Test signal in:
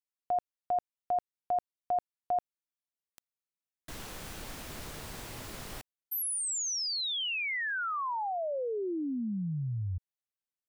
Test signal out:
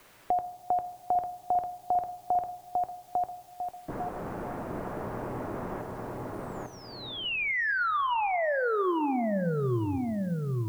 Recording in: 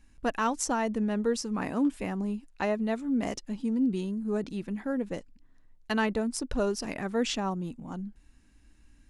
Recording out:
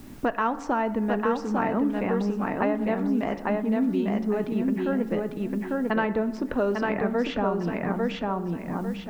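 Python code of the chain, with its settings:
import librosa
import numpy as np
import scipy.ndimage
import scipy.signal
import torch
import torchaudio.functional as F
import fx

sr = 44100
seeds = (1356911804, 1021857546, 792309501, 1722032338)

p1 = fx.env_lowpass(x, sr, base_hz=490.0, full_db=-25.0)
p2 = scipy.signal.sosfilt(scipy.signal.butter(2, 2100.0, 'lowpass', fs=sr, output='sos'), p1)
p3 = fx.low_shelf(p2, sr, hz=190.0, db=-6.0)
p4 = fx.level_steps(p3, sr, step_db=22)
p5 = p3 + (p4 * librosa.db_to_amplitude(1.5))
p6 = fx.quant_dither(p5, sr, seeds[0], bits=12, dither='triangular')
p7 = fx.echo_feedback(p6, sr, ms=849, feedback_pct=22, wet_db=-3.5)
p8 = fx.rev_fdn(p7, sr, rt60_s=0.95, lf_ratio=1.3, hf_ratio=0.5, size_ms=49.0, drr_db=11.5)
p9 = fx.band_squash(p8, sr, depth_pct=70)
y = p9 * librosa.db_to_amplitude(2.5)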